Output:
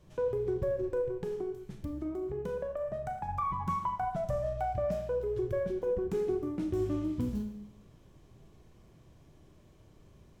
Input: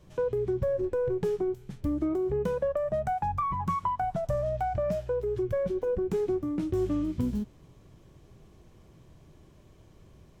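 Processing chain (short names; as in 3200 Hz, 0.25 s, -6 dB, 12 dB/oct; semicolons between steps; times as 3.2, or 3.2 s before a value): 1.01–3.29 compressor, threshold -30 dBFS, peak gain reduction 6 dB; Schroeder reverb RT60 0.77 s, combs from 26 ms, DRR 5.5 dB; gain -4 dB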